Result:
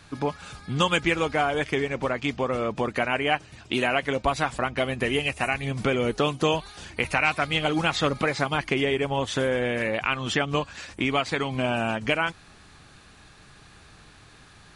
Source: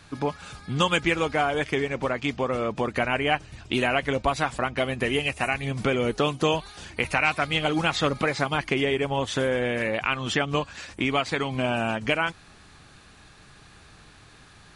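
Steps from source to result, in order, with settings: 2.93–4.23 HPF 140 Hz 6 dB/oct

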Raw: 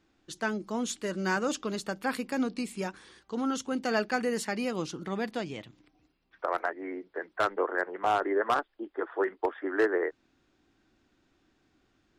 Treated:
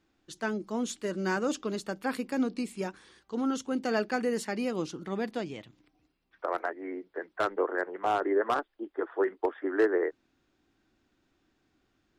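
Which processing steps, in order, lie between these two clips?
dynamic EQ 340 Hz, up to +5 dB, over -38 dBFS, Q 0.84; gain -3 dB

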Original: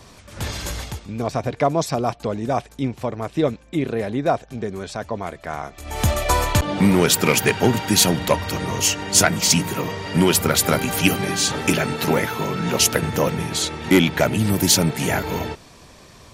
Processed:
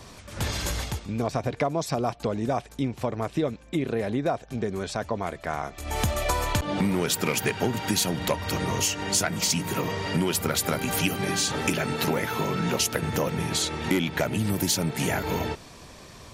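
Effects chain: compressor 4:1, threshold -23 dBFS, peak gain reduction 11 dB

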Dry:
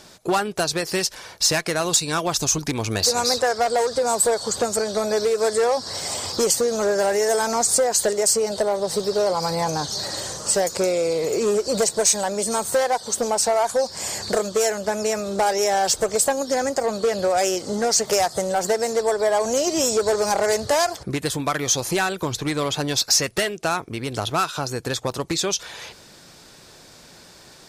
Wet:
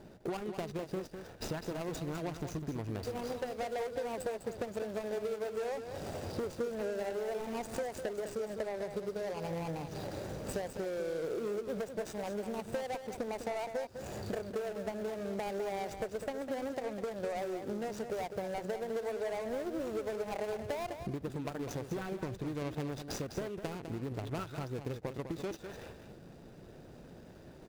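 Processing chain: median filter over 41 samples; compressor 5:1, threshold -37 dBFS, peak gain reduction 17 dB; echo 0.203 s -8.5 dB

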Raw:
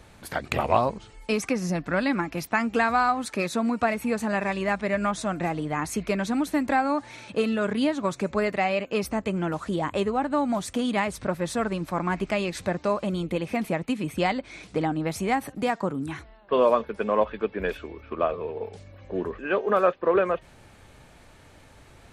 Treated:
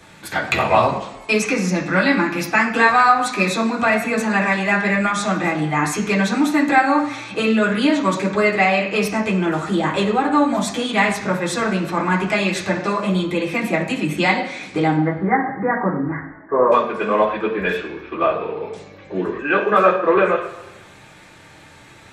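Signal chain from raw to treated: 14.96–16.72 steep low-pass 2000 Hz 96 dB/oct; reverb RT60 1.0 s, pre-delay 3 ms, DRR -4 dB; gain +4 dB

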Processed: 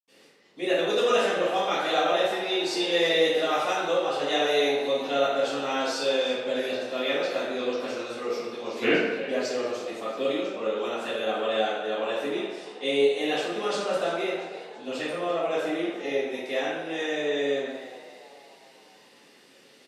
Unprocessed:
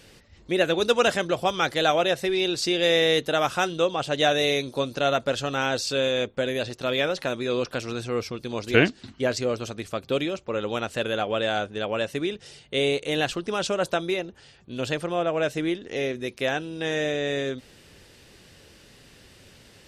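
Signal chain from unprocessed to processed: HPF 220 Hz 24 dB/oct; frequency-shifting echo 0.339 s, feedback 50%, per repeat +87 Hz, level -15.5 dB; reverb RT60 1.2 s, pre-delay 77 ms; gain -2.5 dB

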